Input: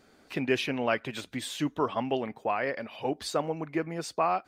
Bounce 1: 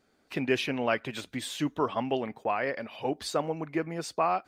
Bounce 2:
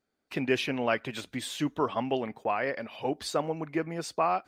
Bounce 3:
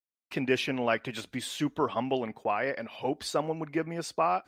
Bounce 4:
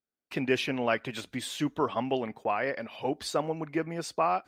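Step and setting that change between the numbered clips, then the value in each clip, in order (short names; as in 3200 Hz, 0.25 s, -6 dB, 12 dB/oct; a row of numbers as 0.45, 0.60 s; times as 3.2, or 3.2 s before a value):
gate, range: -9, -22, -51, -37 dB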